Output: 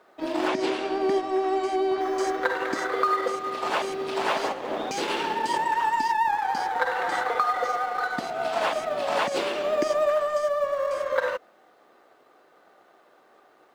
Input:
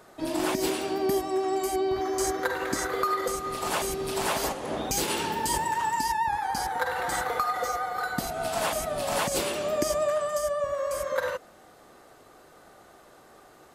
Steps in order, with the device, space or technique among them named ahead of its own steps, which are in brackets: phone line with mismatched companding (band-pass 300–3500 Hz; companding laws mixed up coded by A); 0.48–2.01 s: low-pass 9 kHz 12 dB/octave; trim +4.5 dB

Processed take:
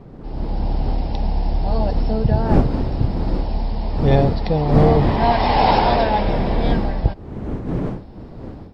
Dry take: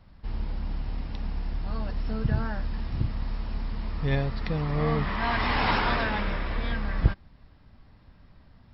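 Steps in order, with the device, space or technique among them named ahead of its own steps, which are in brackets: FFT filter 230 Hz 0 dB, 820 Hz +9 dB, 1.2 kHz -10 dB, 2 kHz -7 dB, 4.4 kHz 0 dB; smartphone video outdoors (wind noise 270 Hz; level rider gain up to 12 dB; trim -1 dB; AAC 96 kbps 48 kHz)

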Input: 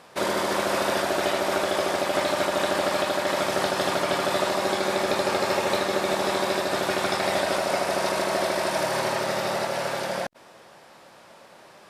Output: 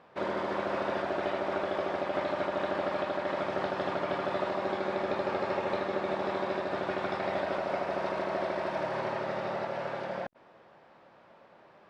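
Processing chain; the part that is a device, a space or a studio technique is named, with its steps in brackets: phone in a pocket (low-pass 3.4 kHz 12 dB/octave; treble shelf 2.5 kHz -8.5 dB); trim -6 dB

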